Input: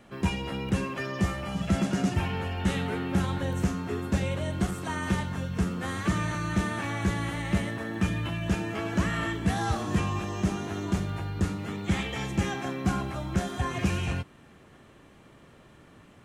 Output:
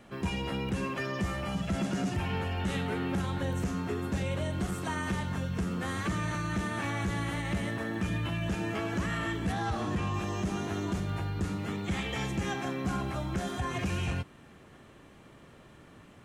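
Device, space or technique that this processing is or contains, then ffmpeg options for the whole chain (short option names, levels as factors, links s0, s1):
soft clipper into limiter: -filter_complex "[0:a]asoftclip=type=tanh:threshold=0.15,alimiter=limit=0.0668:level=0:latency=1:release=107,asettb=1/sr,asplit=3[s0][s1][s2];[s0]atrim=end=9.524[s3];[s1]atrim=start=9.52:end=10.14,asetpts=PTS-STARTPTS,afade=t=in:d=0.004:c=qsin,afade=t=out:st=0.616:d=0.004:c=qsin,acrossover=split=4800[s4][s5];[s5]acompressor=threshold=0.00158:ratio=4:attack=1:release=60[s6];[s4][s6]amix=inputs=2:normalize=0[s7];[s2]atrim=start=10.136[s8];[s3][s7]acrossfade=d=0.004:c1=hsin:c2=qsin[s9];[s9][s8]acrossfade=d=0.004:c1=qsin:c2=hsin"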